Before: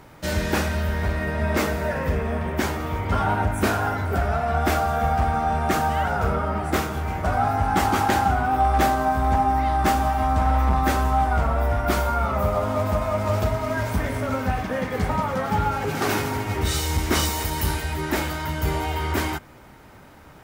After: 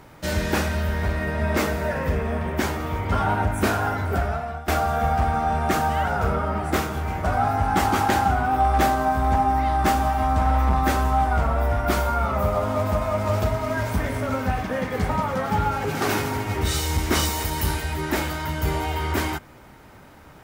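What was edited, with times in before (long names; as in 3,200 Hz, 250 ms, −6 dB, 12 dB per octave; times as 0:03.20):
0:04.17–0:04.68: fade out, to −20 dB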